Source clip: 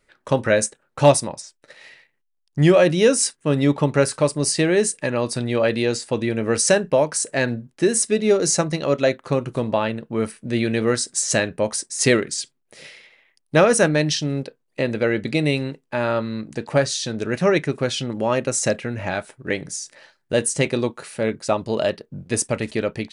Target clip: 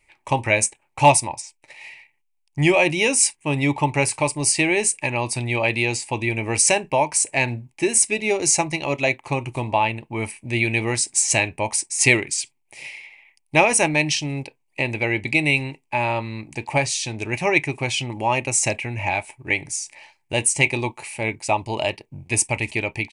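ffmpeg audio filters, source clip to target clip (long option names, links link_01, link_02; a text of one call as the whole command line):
ffmpeg -i in.wav -af "firequalizer=gain_entry='entry(120,0);entry(180,-12);entry(330,-3);entry(480,-12);entry(870,7);entry(1400,-16);entry(2300,11);entry(3500,-5);entry(8200,3);entry(13000,-1)':delay=0.05:min_phase=1,volume=2dB" out.wav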